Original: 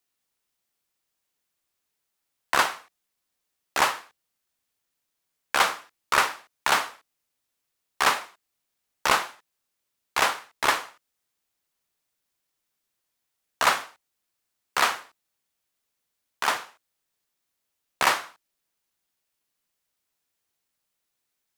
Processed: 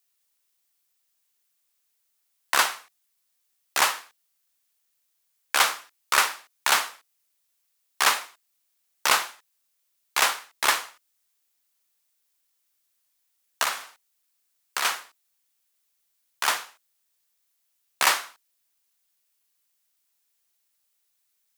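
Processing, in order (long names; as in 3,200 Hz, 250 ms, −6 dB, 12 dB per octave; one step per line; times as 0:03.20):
spectral tilt +2.5 dB per octave
0:13.63–0:14.85: downward compressor 3 to 1, threshold −25 dBFS, peak gain reduction 9.5 dB
level −1.5 dB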